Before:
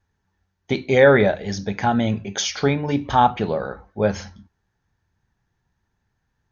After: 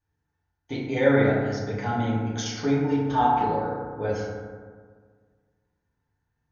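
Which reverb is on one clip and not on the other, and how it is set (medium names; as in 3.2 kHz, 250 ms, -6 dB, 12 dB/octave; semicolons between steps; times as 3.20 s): FDN reverb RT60 1.7 s, low-frequency decay 1.1×, high-frequency decay 0.35×, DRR -7 dB; trim -14 dB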